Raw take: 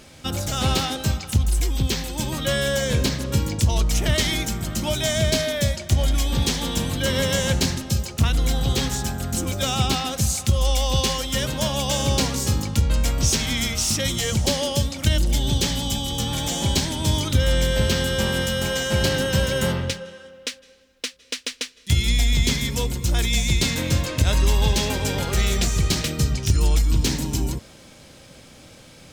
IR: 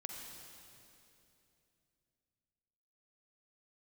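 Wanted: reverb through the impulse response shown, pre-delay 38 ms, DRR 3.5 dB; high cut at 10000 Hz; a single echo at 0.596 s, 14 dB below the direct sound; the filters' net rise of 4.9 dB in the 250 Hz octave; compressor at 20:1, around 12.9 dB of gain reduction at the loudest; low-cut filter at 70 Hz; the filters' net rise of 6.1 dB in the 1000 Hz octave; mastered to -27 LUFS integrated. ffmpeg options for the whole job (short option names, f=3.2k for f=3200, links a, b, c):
-filter_complex "[0:a]highpass=70,lowpass=10k,equalizer=f=250:t=o:g=6,equalizer=f=1k:t=o:g=7.5,acompressor=threshold=-27dB:ratio=20,aecho=1:1:596:0.2,asplit=2[a][b];[1:a]atrim=start_sample=2205,adelay=38[c];[b][c]afir=irnorm=-1:irlink=0,volume=-1.5dB[d];[a][d]amix=inputs=2:normalize=0,volume=2.5dB"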